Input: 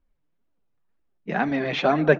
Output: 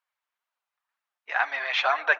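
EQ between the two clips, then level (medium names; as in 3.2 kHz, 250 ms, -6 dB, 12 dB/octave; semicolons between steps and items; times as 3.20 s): high-pass 910 Hz 24 dB/octave; treble shelf 5 kHz -6 dB; +4.5 dB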